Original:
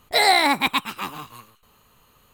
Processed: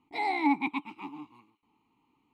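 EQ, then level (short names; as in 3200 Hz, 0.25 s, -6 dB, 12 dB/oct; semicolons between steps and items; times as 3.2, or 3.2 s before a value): vowel filter u; low shelf 380 Hz +5.5 dB; 0.0 dB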